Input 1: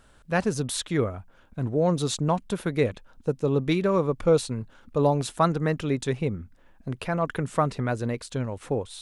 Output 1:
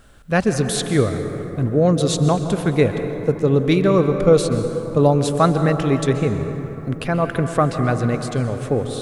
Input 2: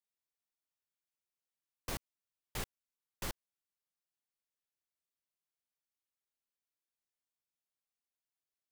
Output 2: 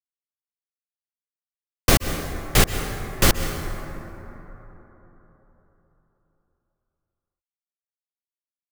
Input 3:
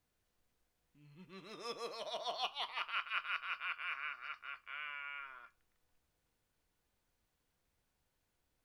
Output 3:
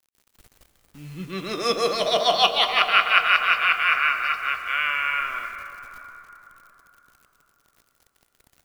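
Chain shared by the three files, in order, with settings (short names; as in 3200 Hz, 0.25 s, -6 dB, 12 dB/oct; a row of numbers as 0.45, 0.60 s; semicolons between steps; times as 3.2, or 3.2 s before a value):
low shelf 310 Hz +2.5 dB; notch 930 Hz, Q 6.7; requantised 12-bit, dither none; plate-style reverb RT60 3.9 s, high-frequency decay 0.35×, pre-delay 0.115 s, DRR 7 dB; normalise peaks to -2 dBFS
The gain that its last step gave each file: +6.0, +23.0, +21.0 dB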